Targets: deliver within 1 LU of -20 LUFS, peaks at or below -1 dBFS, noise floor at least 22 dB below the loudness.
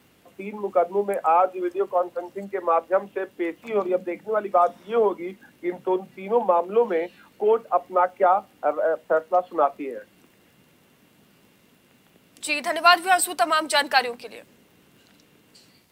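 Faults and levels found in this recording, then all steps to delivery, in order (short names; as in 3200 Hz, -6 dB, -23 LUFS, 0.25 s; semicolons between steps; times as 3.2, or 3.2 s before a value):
ticks 50/s; loudness -23.0 LUFS; peak -2.0 dBFS; loudness target -20.0 LUFS
-> de-click; gain +3 dB; limiter -1 dBFS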